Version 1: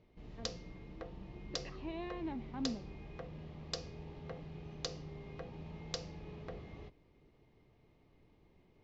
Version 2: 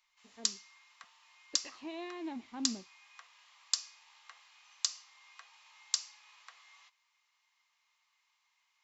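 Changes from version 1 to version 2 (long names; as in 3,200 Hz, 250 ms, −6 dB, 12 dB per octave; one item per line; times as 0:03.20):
background: add elliptic high-pass filter 1,000 Hz, stop band 80 dB
master: remove high-frequency loss of the air 230 metres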